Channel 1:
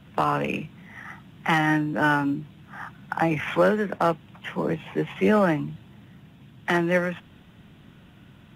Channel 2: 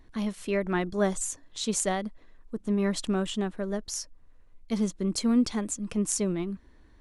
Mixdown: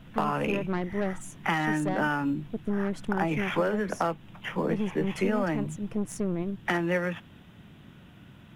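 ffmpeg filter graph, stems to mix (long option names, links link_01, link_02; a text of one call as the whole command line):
ffmpeg -i stem1.wav -i stem2.wav -filter_complex "[0:a]volume=-0.5dB[link_01];[1:a]equalizer=frequency=125:width_type=o:width=1:gain=6,equalizer=frequency=4000:width_type=o:width=1:gain=-11,equalizer=frequency=8000:width_type=o:width=1:gain=-11,aeval=exprs='(tanh(15.8*val(0)+0.75)-tanh(0.75))/15.8':channel_layout=same,volume=2.5dB[link_02];[link_01][link_02]amix=inputs=2:normalize=0,acompressor=threshold=-23dB:ratio=6" out.wav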